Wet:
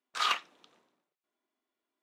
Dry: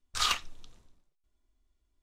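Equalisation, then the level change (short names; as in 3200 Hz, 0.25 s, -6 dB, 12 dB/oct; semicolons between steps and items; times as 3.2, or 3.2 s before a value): HPF 170 Hz 24 dB/oct; tone controls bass -13 dB, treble -14 dB; high shelf 10000 Hz +3 dB; +2.5 dB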